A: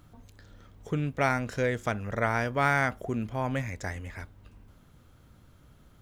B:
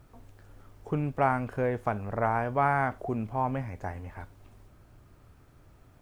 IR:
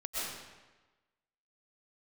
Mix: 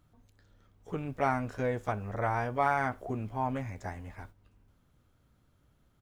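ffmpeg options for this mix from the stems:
-filter_complex "[0:a]volume=-11.5dB[link_01];[1:a]agate=range=-17dB:threshold=-45dB:ratio=16:detection=peak,volume=-1,adelay=14,volume=-4dB[link_02];[link_01][link_02]amix=inputs=2:normalize=0"

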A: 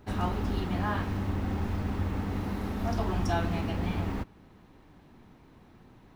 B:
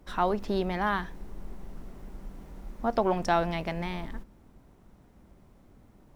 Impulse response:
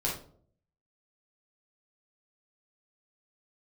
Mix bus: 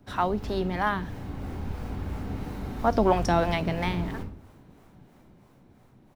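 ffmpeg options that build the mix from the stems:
-filter_complex "[0:a]acrossover=split=470|3000[link_01][link_02][link_03];[link_02]acompressor=threshold=-41dB:ratio=6[link_04];[link_01][link_04][link_03]amix=inputs=3:normalize=0,volume=-13dB,asplit=2[link_05][link_06];[link_06]volume=-4dB[link_07];[1:a]highpass=frequency=80:width=0.5412,highpass=frequency=80:width=1.3066,acrossover=split=420[link_08][link_09];[link_08]aeval=exprs='val(0)*(1-0.7/2+0.7/2*cos(2*PI*3*n/s))':channel_layout=same[link_10];[link_09]aeval=exprs='val(0)*(1-0.7/2-0.7/2*cos(2*PI*3*n/s))':channel_layout=same[link_11];[link_10][link_11]amix=inputs=2:normalize=0,adelay=0.7,volume=3dB[link_12];[2:a]atrim=start_sample=2205[link_13];[link_07][link_13]afir=irnorm=-1:irlink=0[link_14];[link_05][link_12][link_14]amix=inputs=3:normalize=0,dynaudnorm=framelen=310:gausssize=9:maxgain=5dB"

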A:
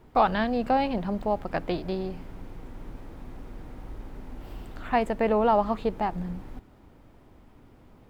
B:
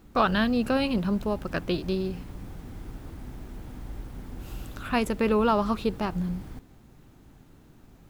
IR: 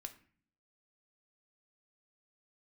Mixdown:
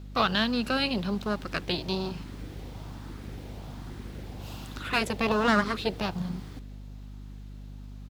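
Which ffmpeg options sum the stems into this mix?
-filter_complex "[0:a]dynaudnorm=framelen=300:gausssize=13:maxgain=11.5dB,aeval=exprs='abs(val(0))':channel_layout=same,asplit=2[link_01][link_02];[link_02]afreqshift=1.2[link_03];[link_01][link_03]amix=inputs=2:normalize=1,volume=-6dB[link_04];[1:a]highpass=frequency=91:width=0.5412,highpass=frequency=91:width=1.3066,equalizer=frequency=4100:width=0.8:gain=11,adelay=0.6,volume=-4dB[link_05];[link_04][link_05]amix=inputs=2:normalize=0,highpass=53,aeval=exprs='val(0)+0.00891*(sin(2*PI*50*n/s)+sin(2*PI*2*50*n/s)/2+sin(2*PI*3*50*n/s)/3+sin(2*PI*4*50*n/s)/4+sin(2*PI*5*50*n/s)/5)':channel_layout=same"

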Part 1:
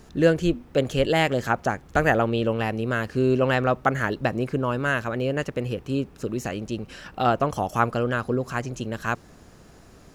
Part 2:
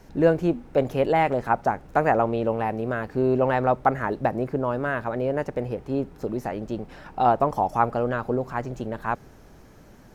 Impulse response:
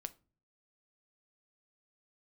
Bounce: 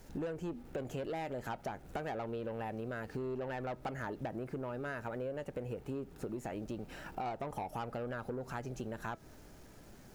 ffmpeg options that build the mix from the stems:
-filter_complex "[0:a]highshelf=frequency=5500:gain=9.5,acrusher=bits=7:mix=0:aa=0.000001,volume=-11dB[link_01];[1:a]bandreject=frequency=1100:width=8.6,asoftclip=type=tanh:threshold=-20.5dB,volume=-2dB,asplit=2[link_02][link_03];[link_03]apad=whole_len=447319[link_04];[link_01][link_04]sidechaincompress=threshold=-32dB:ratio=8:attack=16:release=138[link_05];[link_05][link_02]amix=inputs=2:normalize=0,flanger=delay=1.7:depth=1.7:regen=86:speed=0.37:shape=triangular,acompressor=threshold=-37dB:ratio=6"

